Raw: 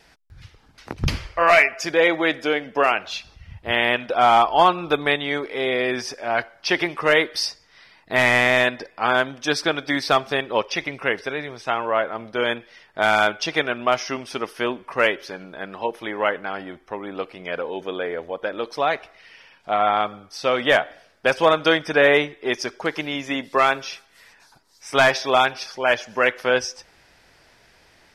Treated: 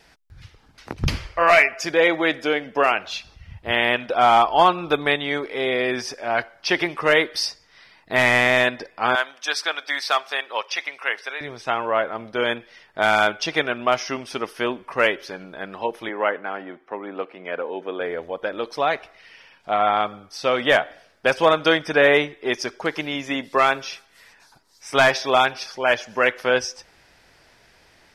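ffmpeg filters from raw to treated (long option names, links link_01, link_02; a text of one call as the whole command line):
ffmpeg -i in.wav -filter_complex "[0:a]asettb=1/sr,asplit=3[link_01][link_02][link_03];[link_01]atrim=end=9.154[link_04];[link_02]atrim=start=9.15:end=11.41,asetpts=PTS-STARTPTS,afade=type=in:duration=0.004:curve=qsin,afade=type=out:start_time=2.256:duration=0.004:curve=qsin,highpass=840[link_05];[link_03]atrim=start=11.406[link_06];[link_04][link_05]acrossfade=duration=0.004:curve1=hsin:curve2=qsin[link_07];[link_07][link_06]acrossfade=duration=0.004:curve1=qsin:curve2=hsin,asettb=1/sr,asplit=3[link_08][link_09][link_10];[link_08]atrim=end=16.094[link_11];[link_09]atrim=start=16.09:end=18.01,asetpts=PTS-STARTPTS,afade=type=in:duration=0.004:curve=qsin,afade=type=out:start_time=1.916:duration=0.004:curve=qsin,acrossover=split=180 2900:gain=0.0708 1 0.178[link_12][link_13][link_14];[link_12][link_13][link_14]amix=inputs=3:normalize=0[link_15];[link_10]atrim=start=18.006[link_16];[link_11][link_15]acrossfade=duration=0.004:curve1=hsin:curve2=qsin[link_17];[link_17][link_16]acrossfade=duration=0.004:curve1=qsin:curve2=hsin" out.wav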